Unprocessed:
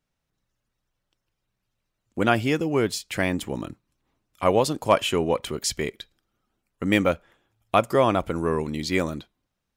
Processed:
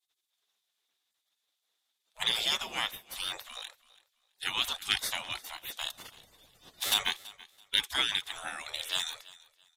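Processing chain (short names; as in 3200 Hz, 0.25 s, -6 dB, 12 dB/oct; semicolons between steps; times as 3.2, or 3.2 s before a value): 5.9–6.94 switching spikes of -20 dBFS; notch 720 Hz, Q 24; spectral gate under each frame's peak -25 dB weak; bell 3600 Hz +13 dB 0.29 oct; on a send: feedback echo 0.332 s, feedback 24%, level -20.5 dB; on the sum: downsampling 32000 Hz; gain +6 dB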